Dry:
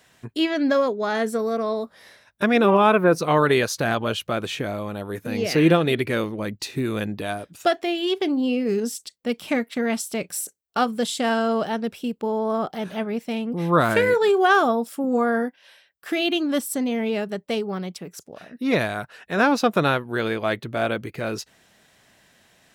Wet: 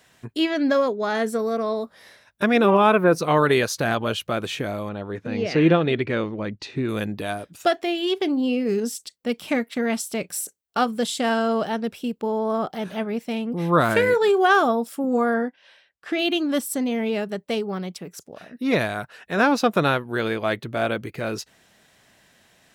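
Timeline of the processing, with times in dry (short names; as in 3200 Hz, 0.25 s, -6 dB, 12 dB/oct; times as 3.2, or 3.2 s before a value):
4.89–6.89 air absorption 140 m
15.34–16.19 air absorption 83 m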